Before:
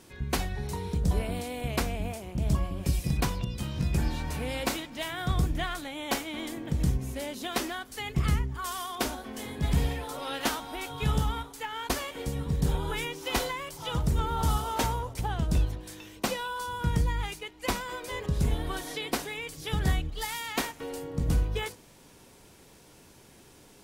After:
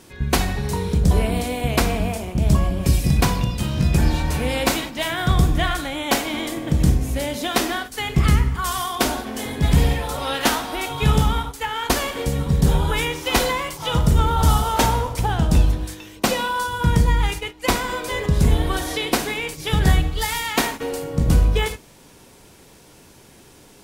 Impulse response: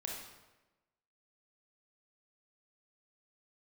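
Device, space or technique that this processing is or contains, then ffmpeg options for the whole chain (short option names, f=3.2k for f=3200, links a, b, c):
keyed gated reverb: -filter_complex "[0:a]asplit=3[a][b][c];[1:a]atrim=start_sample=2205[d];[b][d]afir=irnorm=-1:irlink=0[e];[c]apad=whole_len=1050933[f];[e][f]sidechaingate=range=-33dB:threshold=-41dB:ratio=16:detection=peak,volume=-3dB[g];[a][g]amix=inputs=2:normalize=0,volume=6.5dB"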